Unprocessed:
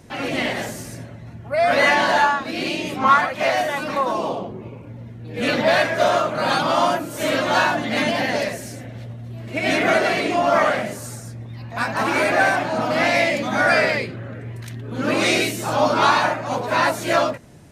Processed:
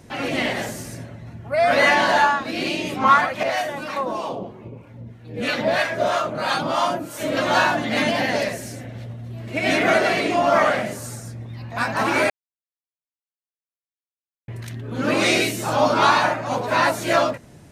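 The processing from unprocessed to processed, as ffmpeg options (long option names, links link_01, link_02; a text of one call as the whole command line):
ffmpeg -i in.wav -filter_complex "[0:a]asettb=1/sr,asplit=3[link_01][link_02][link_03];[link_01]atrim=end=3.434[link_04];[link_02]atrim=start=3.43:end=7.37,asetpts=PTS-STARTPTS,afade=type=in:duration=0.004:curve=qsin,afade=type=out:start_time=3.936:duration=0.004:curve=qsin,acrossover=split=680[link_05][link_06];[link_05]aeval=exprs='val(0)*(1-0.7/2+0.7/2*cos(2*PI*3.1*n/s))':channel_layout=same[link_07];[link_06]aeval=exprs='val(0)*(1-0.7/2-0.7/2*cos(2*PI*3.1*n/s))':channel_layout=same[link_08];[link_07][link_08]amix=inputs=2:normalize=0[link_09];[link_03]atrim=start=7.366[link_10];[link_04][link_09]acrossfade=duration=0.004:curve1=hsin:curve2=qsin[link_11];[link_11][link_10]acrossfade=duration=0.004:curve1=qsin:curve2=hsin,asplit=3[link_12][link_13][link_14];[link_12]atrim=end=12.3,asetpts=PTS-STARTPTS,afade=type=out:start_time=12.296:duration=0.004:curve=hsin[link_15];[link_13]atrim=start=12.3:end=14.48,asetpts=PTS-STARTPTS,volume=0[link_16];[link_14]atrim=start=14.48,asetpts=PTS-STARTPTS,afade=type=in:duration=0.004:curve=hsin[link_17];[link_15][link_16][link_17]concat=n=3:v=0:a=1" out.wav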